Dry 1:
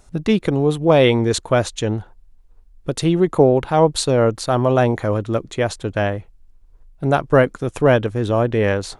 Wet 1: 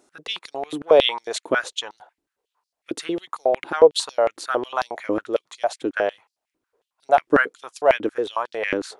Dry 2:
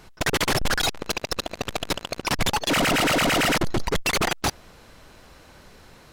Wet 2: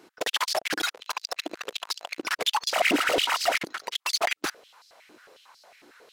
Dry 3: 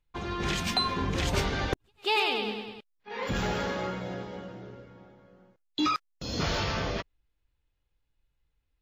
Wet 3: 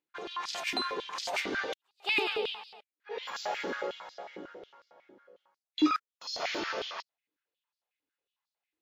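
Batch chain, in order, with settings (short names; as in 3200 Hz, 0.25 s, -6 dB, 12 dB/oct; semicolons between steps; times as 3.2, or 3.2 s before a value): stepped high-pass 11 Hz 310–4700 Hz; gain -6.5 dB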